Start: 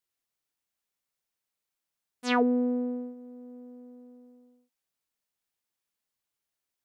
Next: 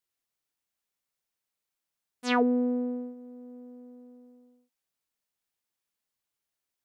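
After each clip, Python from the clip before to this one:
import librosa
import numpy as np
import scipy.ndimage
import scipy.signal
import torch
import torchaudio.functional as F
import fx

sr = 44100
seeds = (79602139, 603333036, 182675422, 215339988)

y = x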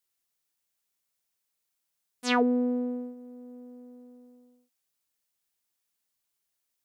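y = fx.high_shelf(x, sr, hz=4100.0, db=7.0)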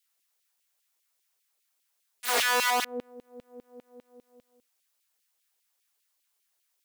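y = (np.mod(10.0 ** (25.0 / 20.0) * x + 1.0, 2.0) - 1.0) / 10.0 ** (25.0 / 20.0)
y = fx.filter_lfo_highpass(y, sr, shape='saw_down', hz=5.0, low_hz=350.0, high_hz=3000.0, q=1.5)
y = y * 10.0 ** (4.5 / 20.0)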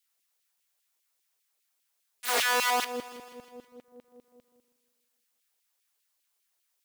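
y = fx.echo_feedback(x, sr, ms=161, feedback_pct=59, wet_db=-16.5)
y = y * 10.0 ** (-1.0 / 20.0)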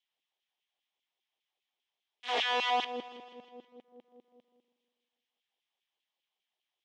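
y = fx.cabinet(x, sr, low_hz=190.0, low_slope=12, high_hz=4600.0, hz=(210.0, 350.0, 780.0, 1400.0, 3200.0, 4500.0), db=(3, 4, 6, -9, 8, -7))
y = y * 10.0 ** (-4.5 / 20.0)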